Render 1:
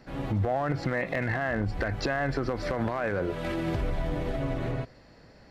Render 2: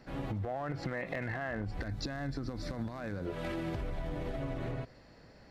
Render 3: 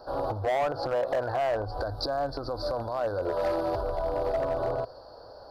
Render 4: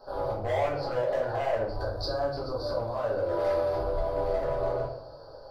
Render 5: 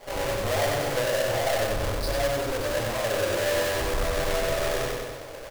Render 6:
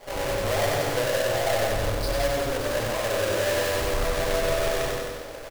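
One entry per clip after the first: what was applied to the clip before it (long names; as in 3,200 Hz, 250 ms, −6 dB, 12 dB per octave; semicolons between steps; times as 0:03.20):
gain on a spectral selection 0:01.82–0:03.26, 340–3,400 Hz −9 dB; downward compressor, threshold −30 dBFS, peak gain reduction 7 dB; level −3 dB
drawn EQ curve 110 Hz 0 dB, 180 Hz −13 dB, 560 Hz +15 dB, 950 Hz +13 dB, 1,500 Hz +6 dB, 2,100 Hz −27 dB, 4,700 Hz +12 dB, 7,000 Hz −16 dB, 9,900 Hz +5 dB; hard clipping −24 dBFS, distortion −13 dB; level +1.5 dB
rectangular room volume 81 cubic metres, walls mixed, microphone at 1.4 metres; level −7.5 dB
each half-wave held at its own peak; repeating echo 94 ms, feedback 50%, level −3.5 dB; in parallel at −2 dB: hard clipping −31 dBFS, distortion −6 dB; on the sum: level −4.5 dB
single-tap delay 168 ms −6.5 dB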